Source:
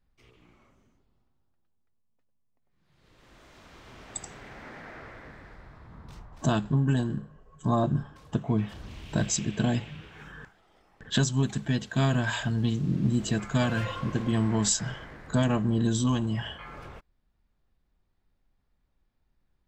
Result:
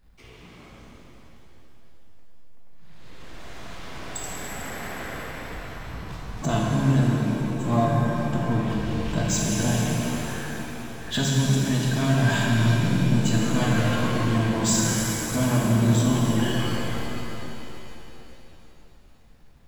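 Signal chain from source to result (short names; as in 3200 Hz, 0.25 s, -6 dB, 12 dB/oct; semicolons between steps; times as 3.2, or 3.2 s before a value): power-law curve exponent 0.7; shimmer reverb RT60 3.4 s, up +7 st, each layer -8 dB, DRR -3.5 dB; gain -4.5 dB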